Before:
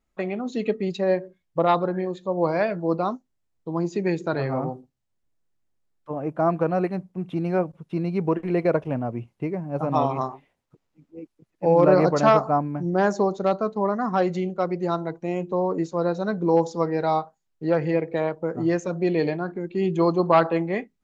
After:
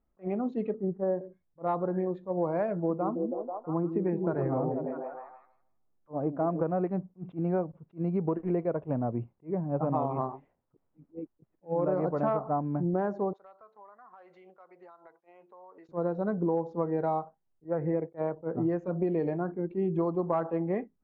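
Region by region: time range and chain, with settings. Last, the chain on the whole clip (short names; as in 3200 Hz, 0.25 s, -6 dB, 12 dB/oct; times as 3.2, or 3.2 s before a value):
0.74–1.21 steep low-pass 1700 Hz 72 dB/oct + upward compressor, threshold -34 dBFS
2.73–6.61 LPF 2300 Hz + delay with a stepping band-pass 0.162 s, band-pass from 250 Hz, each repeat 0.7 oct, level -3 dB
13.33–15.89 HPF 1200 Hz + compressor 12:1, threshold -46 dBFS
17.64–18.18 expander -29 dBFS + band shelf 4000 Hz -16 dB 1.3 oct
whole clip: LPF 1100 Hz 12 dB/oct; compressor 6:1, threshold -25 dBFS; attack slew limiter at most 370 dB/s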